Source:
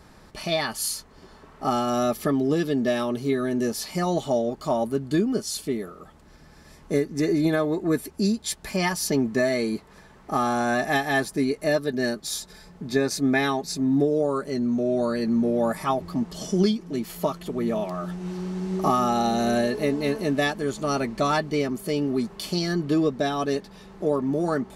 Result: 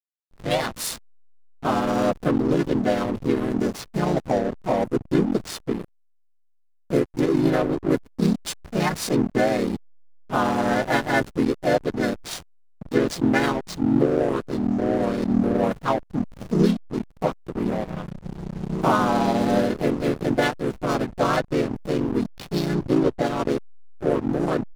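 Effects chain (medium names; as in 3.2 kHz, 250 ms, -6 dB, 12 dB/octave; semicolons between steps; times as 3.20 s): tape start-up on the opening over 0.57 s; harmony voices -3 st -2 dB, +3 st -4 dB; hysteresis with a dead band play -20 dBFS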